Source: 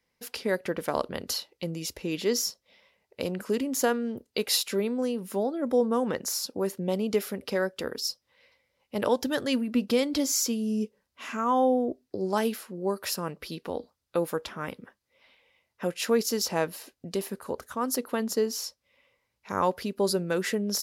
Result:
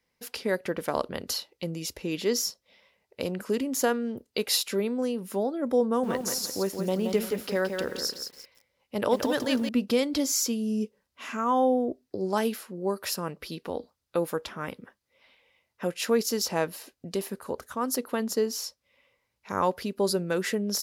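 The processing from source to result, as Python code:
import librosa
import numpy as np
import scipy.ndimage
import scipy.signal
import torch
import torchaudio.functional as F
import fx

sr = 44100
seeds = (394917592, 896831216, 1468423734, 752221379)

y = fx.echo_crushed(x, sr, ms=173, feedback_pct=35, bits=8, wet_db=-5.5, at=(5.86, 9.69))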